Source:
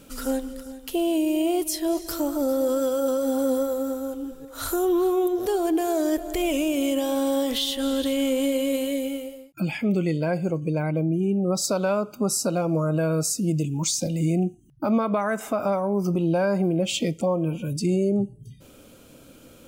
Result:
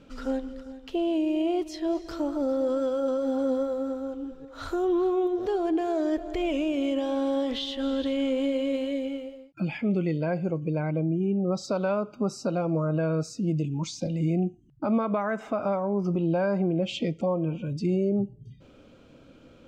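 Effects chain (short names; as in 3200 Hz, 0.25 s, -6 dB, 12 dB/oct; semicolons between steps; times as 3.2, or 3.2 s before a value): air absorption 180 m; gain -2.5 dB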